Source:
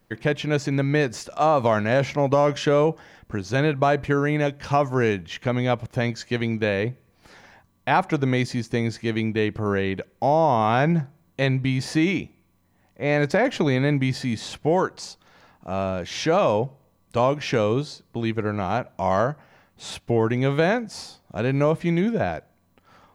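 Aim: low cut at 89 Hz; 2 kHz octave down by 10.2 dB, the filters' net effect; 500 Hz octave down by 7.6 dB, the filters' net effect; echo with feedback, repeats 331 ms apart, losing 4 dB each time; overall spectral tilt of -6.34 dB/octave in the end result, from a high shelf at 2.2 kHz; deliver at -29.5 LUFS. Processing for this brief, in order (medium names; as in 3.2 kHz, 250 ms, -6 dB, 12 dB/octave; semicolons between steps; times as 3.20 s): high-pass 89 Hz; peaking EQ 500 Hz -8.5 dB; peaking EQ 2 kHz -8.5 dB; treble shelf 2.2 kHz -8 dB; feedback delay 331 ms, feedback 63%, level -4 dB; trim -3.5 dB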